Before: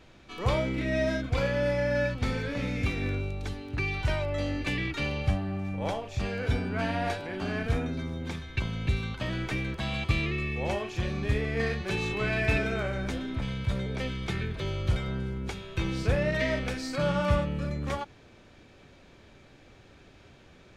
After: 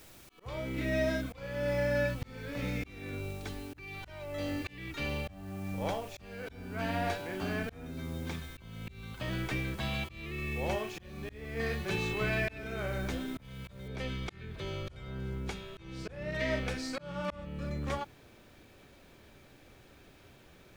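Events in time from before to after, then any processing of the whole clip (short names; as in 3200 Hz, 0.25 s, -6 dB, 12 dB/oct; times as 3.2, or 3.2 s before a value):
13.88 noise floor step -55 dB -69 dB
whole clip: notches 50/100/150/200/250 Hz; auto swell 0.453 s; gain -2.5 dB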